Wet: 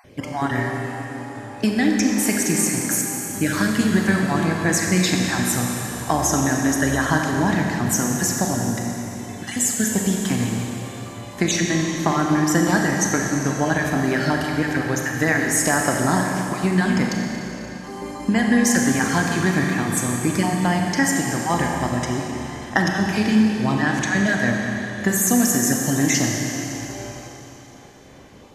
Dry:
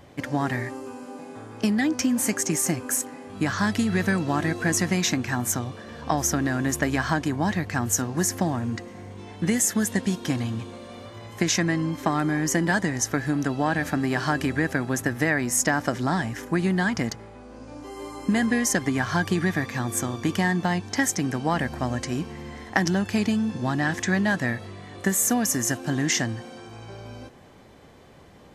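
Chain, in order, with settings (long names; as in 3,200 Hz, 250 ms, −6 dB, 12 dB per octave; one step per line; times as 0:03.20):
time-frequency cells dropped at random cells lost 26%
four-comb reverb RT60 3.3 s, combs from 29 ms, DRR 0.5 dB
level +3 dB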